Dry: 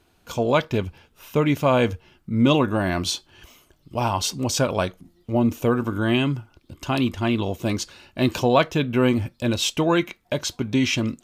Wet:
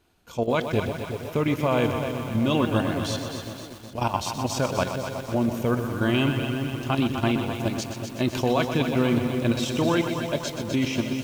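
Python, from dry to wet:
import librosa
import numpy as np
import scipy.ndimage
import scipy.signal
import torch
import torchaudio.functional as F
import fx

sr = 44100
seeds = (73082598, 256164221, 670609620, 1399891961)

y = fx.level_steps(x, sr, step_db=11)
y = fx.echo_split(y, sr, split_hz=790.0, low_ms=364, high_ms=255, feedback_pct=52, wet_db=-9.5)
y = fx.echo_crushed(y, sr, ms=124, feedback_pct=80, bits=7, wet_db=-8.5)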